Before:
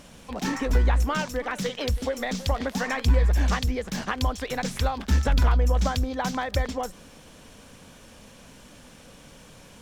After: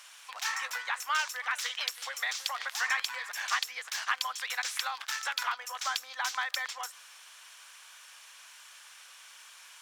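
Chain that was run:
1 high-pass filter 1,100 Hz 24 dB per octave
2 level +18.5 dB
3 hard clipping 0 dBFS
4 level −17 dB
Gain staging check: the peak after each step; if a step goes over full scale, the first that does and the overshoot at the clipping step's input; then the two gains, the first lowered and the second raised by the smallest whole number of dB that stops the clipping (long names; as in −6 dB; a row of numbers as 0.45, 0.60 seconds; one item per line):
−14.5, +4.0, 0.0, −17.0 dBFS
step 2, 4.0 dB
step 2 +14.5 dB, step 4 −13 dB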